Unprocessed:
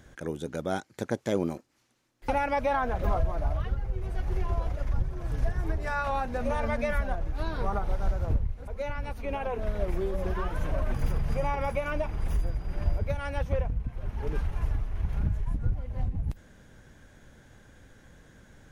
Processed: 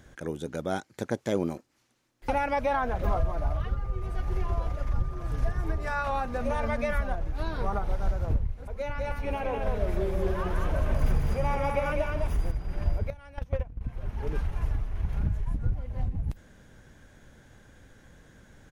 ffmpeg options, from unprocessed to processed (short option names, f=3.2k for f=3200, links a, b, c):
-filter_complex "[0:a]asettb=1/sr,asplit=3[a][b][c];[a]atrim=end=3.034[d];[b]atrim=start=3.03:end=7.1,asetpts=PTS-STARTPTS,afade=t=in:d=0.004:c=qsin,afade=t=out:st=4.066:d=0.004:c=qsin,aeval=exprs='val(0)+0.00447*sin(2*PI*1200*n/s)':c=same[e];[c]atrim=start=7.096[f];[d][e]acrossfade=d=0.004:c1=hsin:c2=qsin[g];[g][f]acrossfade=d=0.004:c1=qsin:c2=hsin,asplit=3[h][i][j];[h]afade=t=out:st=8.97:d=0.02[k];[i]aecho=1:1:145|204:0.299|0.668,afade=t=in:st=8.97:d=0.02,afade=t=out:st=12.5:d=0.02[l];[j]afade=t=in:st=12.5:d=0.02[m];[k][l][m]amix=inputs=3:normalize=0,asettb=1/sr,asplit=3[n][o][p];[n]atrim=end=13.104[q];[o]atrim=start=13.1:end=13.81,asetpts=PTS-STARTPTS,afade=t=in:d=0.004:c=qsin,afade=t=out:st=0.706:d=0.004:c=qsin,agate=range=-15dB:threshold=-26dB:ratio=16:release=100:detection=peak[r];[p]atrim=start=13.806[s];[q][r]acrossfade=d=0.004:c1=hsin:c2=qsin[t];[t][s]acrossfade=d=0.004:c1=qsin:c2=hsin"